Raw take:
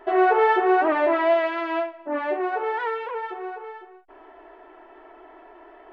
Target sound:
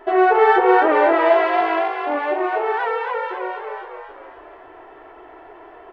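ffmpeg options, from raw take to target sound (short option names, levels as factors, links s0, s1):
-filter_complex "[0:a]asettb=1/sr,asplit=3[s0][s1][s2];[s0]atrim=end=1.614[s3];[s1]atrim=start=1.61:end=3.27,asetpts=PTS-STARTPTS,afade=t=in:d=0.004:c=qsin,afade=t=out:st=1.656:d=0.004:c=qsin,highpass=230[s4];[s2]atrim=start=3.266[s5];[s3][s4]acrossfade=d=0.004:c1=hsin:c2=qsin[s6];[s6][s5]acrossfade=d=0.004:c1=qsin:c2=hsin,asplit=7[s7][s8][s9][s10][s11][s12][s13];[s8]adelay=269,afreqshift=52,volume=0.562[s14];[s9]adelay=538,afreqshift=104,volume=0.269[s15];[s10]adelay=807,afreqshift=156,volume=0.129[s16];[s11]adelay=1076,afreqshift=208,volume=0.0624[s17];[s12]adelay=1345,afreqshift=260,volume=0.0299[s18];[s13]adelay=1614,afreqshift=312,volume=0.0143[s19];[s7][s14][s15][s16][s17][s18][s19]amix=inputs=7:normalize=0,volume=1.5"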